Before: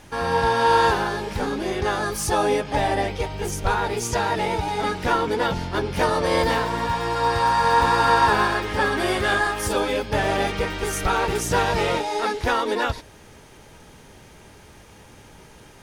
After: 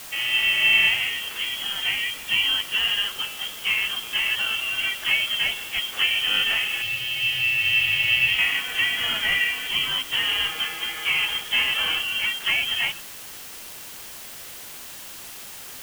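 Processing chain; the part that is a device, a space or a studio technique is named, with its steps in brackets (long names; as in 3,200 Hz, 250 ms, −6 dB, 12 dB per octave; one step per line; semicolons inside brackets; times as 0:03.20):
scrambled radio voice (band-pass filter 400–2,700 Hz; voice inversion scrambler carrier 3,600 Hz; white noise bed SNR 15 dB)
0:06.82–0:08.39: graphic EQ with 10 bands 125 Hz +12 dB, 250 Hz −9 dB, 1,000 Hz −8 dB, 2,000 Hz −6 dB, 4,000 Hz +5 dB, 8,000 Hz −4 dB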